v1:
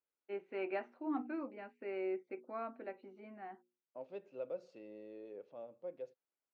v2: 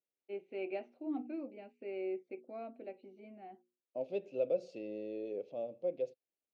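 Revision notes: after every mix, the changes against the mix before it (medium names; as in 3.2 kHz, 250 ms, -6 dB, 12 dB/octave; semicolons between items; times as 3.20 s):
second voice +9.5 dB; master: add high-order bell 1.3 kHz -14.5 dB 1.3 oct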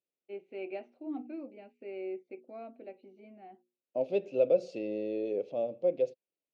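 second voice +7.5 dB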